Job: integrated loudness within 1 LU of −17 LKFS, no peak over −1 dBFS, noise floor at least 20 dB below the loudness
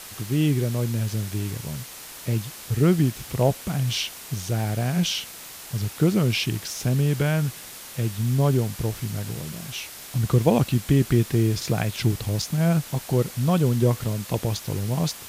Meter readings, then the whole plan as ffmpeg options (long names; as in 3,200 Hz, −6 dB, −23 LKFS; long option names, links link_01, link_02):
background noise floor −41 dBFS; target noise floor −45 dBFS; integrated loudness −24.5 LKFS; sample peak −6.0 dBFS; target loudness −17.0 LKFS
→ -af "afftdn=noise_reduction=6:noise_floor=-41"
-af "volume=7.5dB,alimiter=limit=-1dB:level=0:latency=1"